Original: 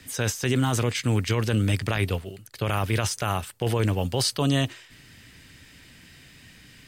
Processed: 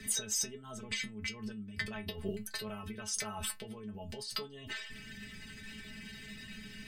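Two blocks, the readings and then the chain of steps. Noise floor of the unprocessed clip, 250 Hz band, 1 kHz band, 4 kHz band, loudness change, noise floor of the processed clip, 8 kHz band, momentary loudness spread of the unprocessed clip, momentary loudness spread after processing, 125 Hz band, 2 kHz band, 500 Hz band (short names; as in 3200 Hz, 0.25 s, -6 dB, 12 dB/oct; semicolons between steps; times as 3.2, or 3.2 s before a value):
-51 dBFS, -15.5 dB, -17.0 dB, -9.0 dB, -14.0 dB, -50 dBFS, -4.0 dB, 5 LU, 13 LU, -23.5 dB, -9.0 dB, -16.0 dB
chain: formant sharpening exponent 1.5; negative-ratio compressor -35 dBFS, ratio -1; metallic resonator 210 Hz, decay 0.2 s, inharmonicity 0.002; gain +7 dB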